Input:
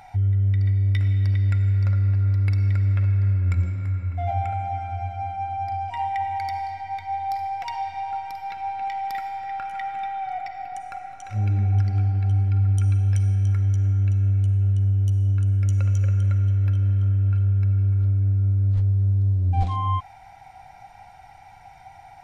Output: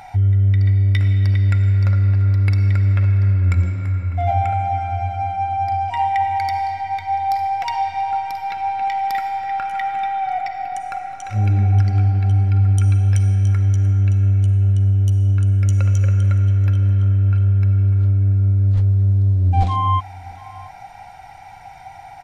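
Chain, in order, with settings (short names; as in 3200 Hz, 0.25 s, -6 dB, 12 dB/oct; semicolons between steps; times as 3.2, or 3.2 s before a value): low shelf 120 Hz -3.5 dB; echo 0.687 s -22.5 dB; gain +7.5 dB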